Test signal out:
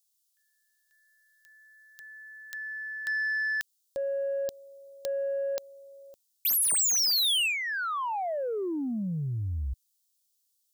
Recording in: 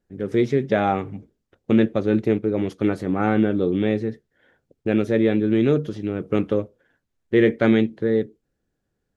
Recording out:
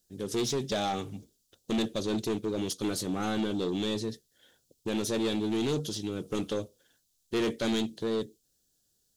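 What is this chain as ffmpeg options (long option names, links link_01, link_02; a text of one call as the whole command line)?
ffmpeg -i in.wav -filter_complex "[0:a]aexciter=amount=14.6:drive=3:freq=3200,acrossover=split=3300[link_01][link_02];[link_02]acompressor=threshold=-8dB:ratio=4:attack=1:release=60[link_03];[link_01][link_03]amix=inputs=2:normalize=0,asoftclip=type=tanh:threshold=-18dB,volume=-6.5dB" out.wav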